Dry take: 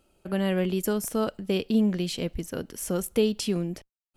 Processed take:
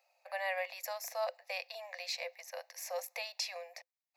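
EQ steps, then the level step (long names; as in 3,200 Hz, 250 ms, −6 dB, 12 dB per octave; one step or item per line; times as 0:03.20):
Chebyshev high-pass with heavy ripple 500 Hz, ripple 6 dB
phaser with its sweep stopped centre 2,100 Hz, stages 8
+3.5 dB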